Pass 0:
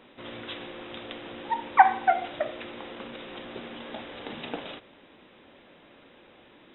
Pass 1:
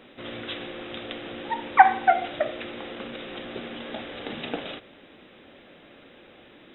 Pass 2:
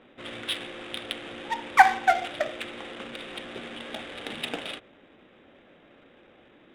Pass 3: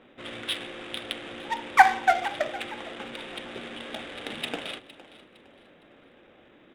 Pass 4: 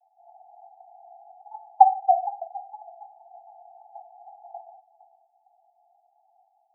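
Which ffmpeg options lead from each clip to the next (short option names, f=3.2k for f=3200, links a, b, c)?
-af "equalizer=f=970:w=4.5:g=-7,volume=4dB"
-af "crystalizer=i=7:c=0,adynamicsmooth=sensitivity=2.5:basefreq=1.3k,volume=-4.5dB"
-filter_complex "[0:a]asplit=4[a][b][c][d];[b]adelay=460,afreqshift=44,volume=-17.5dB[e];[c]adelay=920,afreqshift=88,volume=-26.9dB[f];[d]adelay=1380,afreqshift=132,volume=-36.2dB[g];[a][e][f][g]amix=inputs=4:normalize=0"
-af "asuperpass=centerf=760:order=20:qfactor=3.8,volume=3dB"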